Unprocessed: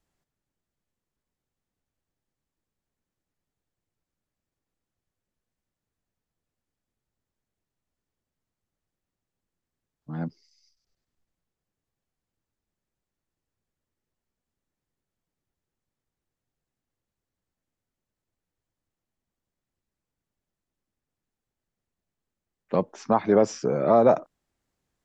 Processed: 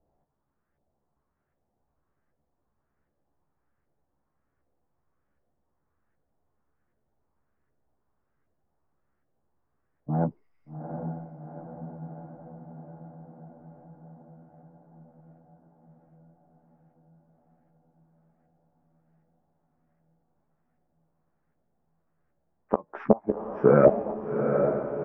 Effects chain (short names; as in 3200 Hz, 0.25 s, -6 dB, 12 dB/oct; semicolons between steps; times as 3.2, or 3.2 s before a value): LFO low-pass saw up 1.3 Hz 590–1700 Hz; flipped gate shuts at -9 dBFS, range -29 dB; polynomial smoothing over 25 samples; doubler 14 ms -6 dB; diffused feedback echo 0.784 s, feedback 67%, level -6 dB; gain +5 dB